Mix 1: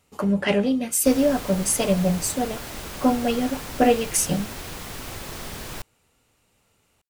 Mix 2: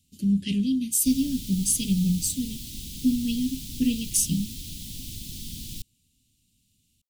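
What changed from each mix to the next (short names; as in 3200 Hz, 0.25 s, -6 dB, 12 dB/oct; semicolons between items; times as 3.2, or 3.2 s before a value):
master: add elliptic band-stop 250–3300 Hz, stop band 70 dB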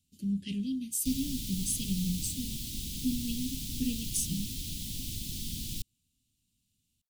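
speech -9.0 dB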